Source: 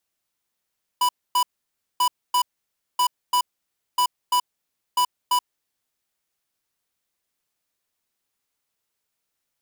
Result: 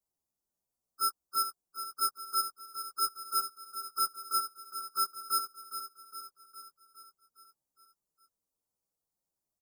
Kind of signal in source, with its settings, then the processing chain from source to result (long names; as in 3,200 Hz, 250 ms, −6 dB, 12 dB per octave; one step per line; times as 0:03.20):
beeps in groups square 988 Hz, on 0.08 s, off 0.26 s, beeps 2, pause 0.57 s, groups 5, −19 dBFS
partials spread apart or drawn together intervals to 122%
Butterworth band-reject 2,400 Hz, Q 0.52
on a send: repeating echo 411 ms, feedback 58%, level −10 dB